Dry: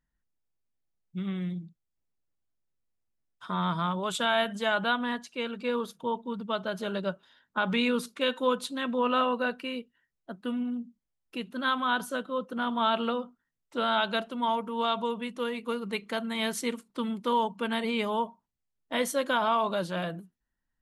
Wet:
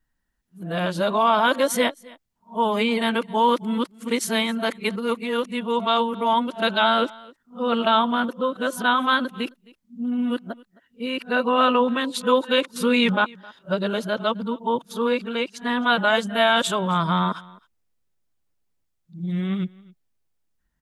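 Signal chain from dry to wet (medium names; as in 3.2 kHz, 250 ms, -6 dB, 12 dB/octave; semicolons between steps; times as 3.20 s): reverse the whole clip; on a send: delay 264 ms -23.5 dB; on the sum: trim +7.5 dB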